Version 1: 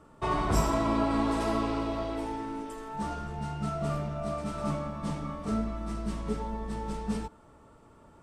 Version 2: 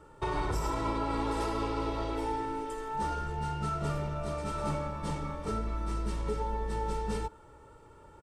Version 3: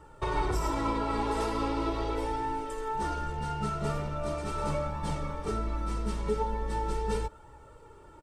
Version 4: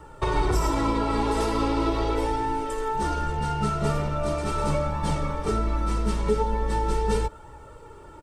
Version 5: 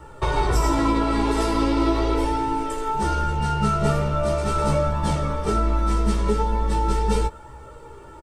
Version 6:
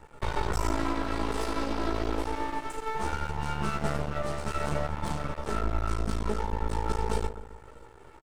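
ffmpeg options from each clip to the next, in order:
ffmpeg -i in.wav -af "aecho=1:1:2.2:0.61,alimiter=limit=-22.5dB:level=0:latency=1:release=122" out.wav
ffmpeg -i in.wav -af "flanger=delay=1:depth=4:regen=53:speed=0.4:shape=triangular,volume=6dB" out.wav
ffmpeg -i in.wav -filter_complex "[0:a]acrossover=split=460|3000[link_01][link_02][link_03];[link_02]acompressor=threshold=-33dB:ratio=6[link_04];[link_01][link_04][link_03]amix=inputs=3:normalize=0,volume=7dB" out.wav
ffmpeg -i in.wav -filter_complex "[0:a]asplit=2[link_01][link_02];[link_02]adelay=15,volume=-3.5dB[link_03];[link_01][link_03]amix=inputs=2:normalize=0,volume=1.5dB" out.wav
ffmpeg -i in.wav -filter_complex "[0:a]asplit=2[link_01][link_02];[link_02]adelay=131,lowpass=frequency=870:poles=1,volume=-10.5dB,asplit=2[link_03][link_04];[link_04]adelay=131,lowpass=frequency=870:poles=1,volume=0.51,asplit=2[link_05][link_06];[link_06]adelay=131,lowpass=frequency=870:poles=1,volume=0.51,asplit=2[link_07][link_08];[link_08]adelay=131,lowpass=frequency=870:poles=1,volume=0.51,asplit=2[link_09][link_10];[link_10]adelay=131,lowpass=frequency=870:poles=1,volume=0.51,asplit=2[link_11][link_12];[link_12]adelay=131,lowpass=frequency=870:poles=1,volume=0.51[link_13];[link_01][link_03][link_05][link_07][link_09][link_11][link_13]amix=inputs=7:normalize=0,aeval=exprs='max(val(0),0)':channel_layout=same,volume=-5dB" out.wav

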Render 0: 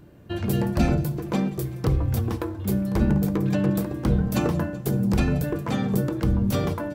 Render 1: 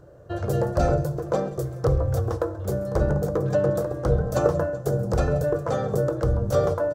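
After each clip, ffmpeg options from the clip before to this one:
ffmpeg -i in.wav -af "firequalizer=gain_entry='entry(140,0);entry(210,-13);entry(520,12);entry(920,-1);entry(1300,5);entry(2300,-13);entry(3600,-7);entry(6300,1);entry(12000,-9)':delay=0.05:min_phase=1,aecho=1:1:134:0.0841" out.wav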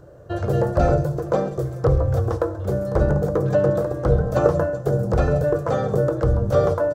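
ffmpeg -i in.wav -filter_complex "[0:a]acrossover=split=3600[link_01][link_02];[link_02]acompressor=threshold=-50dB:ratio=4:attack=1:release=60[link_03];[link_01][link_03]amix=inputs=2:normalize=0,volume=3.5dB" out.wav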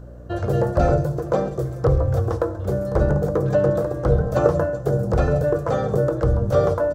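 ffmpeg -i in.wav -af "aeval=exprs='val(0)+0.0112*(sin(2*PI*60*n/s)+sin(2*PI*2*60*n/s)/2+sin(2*PI*3*60*n/s)/3+sin(2*PI*4*60*n/s)/4+sin(2*PI*5*60*n/s)/5)':channel_layout=same" out.wav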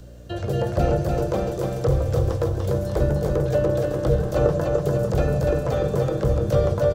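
ffmpeg -i in.wav -filter_complex "[0:a]acrossover=split=110|1700[link_01][link_02][link_03];[link_03]acompressor=threshold=-54dB:ratio=6[link_04];[link_01][link_02][link_04]amix=inputs=3:normalize=0,highshelf=frequency=1900:width_type=q:width=1.5:gain=13,aecho=1:1:294|588|882|1176|1470|1764|2058:0.668|0.354|0.188|0.0995|0.0527|0.0279|0.0148,volume=-3dB" out.wav

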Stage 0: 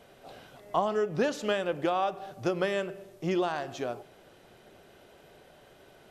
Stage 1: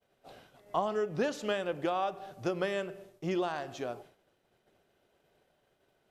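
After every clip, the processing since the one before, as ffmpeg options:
ffmpeg -i in.wav -af "agate=range=-33dB:threshold=-46dB:ratio=3:detection=peak,volume=-3.5dB" out.wav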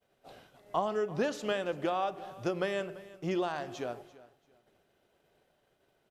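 ffmpeg -i in.wav -af "aecho=1:1:339|678:0.112|0.0281" out.wav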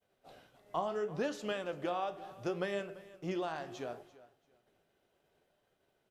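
ffmpeg -i in.wav -af "flanger=delay=9.7:depth=9:regen=67:speed=0.71:shape=sinusoidal" out.wav

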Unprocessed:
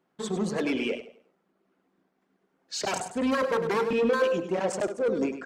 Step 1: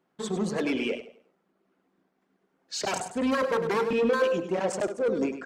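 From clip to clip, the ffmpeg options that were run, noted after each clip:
ffmpeg -i in.wav -af anull out.wav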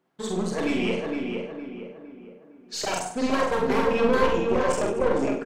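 ffmpeg -i in.wav -filter_complex "[0:a]asplit=2[link_01][link_02];[link_02]adelay=460,lowpass=frequency=2100:poles=1,volume=-3.5dB,asplit=2[link_03][link_04];[link_04]adelay=460,lowpass=frequency=2100:poles=1,volume=0.45,asplit=2[link_05][link_06];[link_06]adelay=460,lowpass=frequency=2100:poles=1,volume=0.45,asplit=2[link_07][link_08];[link_08]adelay=460,lowpass=frequency=2100:poles=1,volume=0.45,asplit=2[link_09][link_10];[link_10]adelay=460,lowpass=frequency=2100:poles=1,volume=0.45,asplit=2[link_11][link_12];[link_12]adelay=460,lowpass=frequency=2100:poles=1,volume=0.45[link_13];[link_03][link_05][link_07][link_09][link_11][link_13]amix=inputs=6:normalize=0[link_14];[link_01][link_14]amix=inputs=2:normalize=0,aeval=exprs='0.251*(cos(1*acos(clip(val(0)/0.251,-1,1)))-cos(1*PI/2))+0.112*(cos(2*acos(clip(val(0)/0.251,-1,1)))-cos(2*PI/2))':channel_layout=same,asplit=2[link_15][link_16];[link_16]aecho=0:1:45|67:0.668|0.335[link_17];[link_15][link_17]amix=inputs=2:normalize=0" out.wav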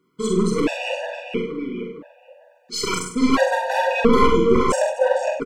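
ffmpeg -i in.wav -af "afftfilt=real='re*gt(sin(2*PI*0.74*pts/sr)*(1-2*mod(floor(b*sr/1024/490),2)),0)':imag='im*gt(sin(2*PI*0.74*pts/sr)*(1-2*mod(floor(b*sr/1024/490),2)),0)':win_size=1024:overlap=0.75,volume=8.5dB" out.wav

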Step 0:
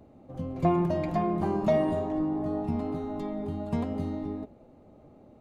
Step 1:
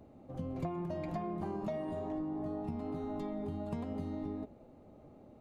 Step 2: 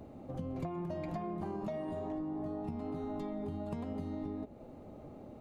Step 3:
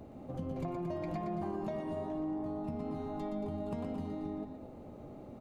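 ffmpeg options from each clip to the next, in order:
ffmpeg -i in.wav -af "acompressor=threshold=-32dB:ratio=10,volume=-2.5dB" out.wav
ffmpeg -i in.wav -af "acompressor=threshold=-48dB:ratio=2,volume=6.5dB" out.wav
ffmpeg -i in.wav -af "aecho=1:1:119.5|227.4:0.501|0.316" out.wav

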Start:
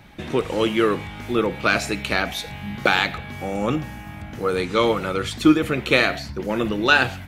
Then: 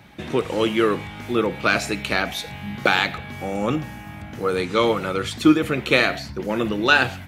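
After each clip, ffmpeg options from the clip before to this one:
ffmpeg -i in.wav -af "highpass=70" out.wav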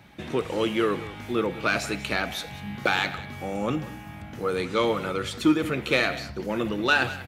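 ffmpeg -i in.wav -filter_complex "[0:a]asplit=2[link_01][link_02];[link_02]asoftclip=type=tanh:threshold=-14dB,volume=-4.5dB[link_03];[link_01][link_03]amix=inputs=2:normalize=0,aecho=1:1:188:0.15,volume=-8dB" out.wav

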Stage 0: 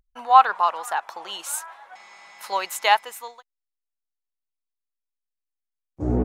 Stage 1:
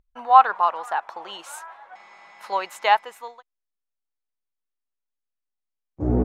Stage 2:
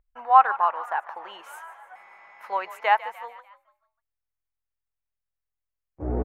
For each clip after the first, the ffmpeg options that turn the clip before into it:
ffmpeg -i in.wav -af "lowpass=frequency=1800:poles=1,volume=1.5dB" out.wav
ffmpeg -i in.wav -filter_complex "[0:a]equalizer=frequency=125:width_type=o:width=1:gain=-8,equalizer=frequency=250:width_type=o:width=1:gain=-7,equalizer=frequency=2000:width_type=o:width=1:gain=4,equalizer=frequency=4000:width_type=o:width=1:gain=-11,equalizer=frequency=8000:width_type=o:width=1:gain=-10,asplit=5[link_01][link_02][link_03][link_04][link_05];[link_02]adelay=148,afreqshift=42,volume=-16dB[link_06];[link_03]adelay=296,afreqshift=84,volume=-22dB[link_07];[link_04]adelay=444,afreqshift=126,volume=-28dB[link_08];[link_05]adelay=592,afreqshift=168,volume=-34.1dB[link_09];[link_01][link_06][link_07][link_08][link_09]amix=inputs=5:normalize=0,volume=-2dB" out.wav

